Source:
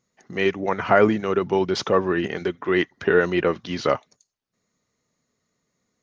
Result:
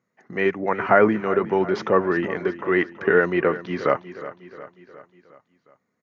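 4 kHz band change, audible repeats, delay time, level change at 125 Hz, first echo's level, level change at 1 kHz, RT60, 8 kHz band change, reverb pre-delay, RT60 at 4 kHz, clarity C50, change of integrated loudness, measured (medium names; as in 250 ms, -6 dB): -9.0 dB, 4, 361 ms, -1.5 dB, -15.0 dB, +1.5 dB, no reverb, no reading, no reverb, no reverb, no reverb, +0.5 dB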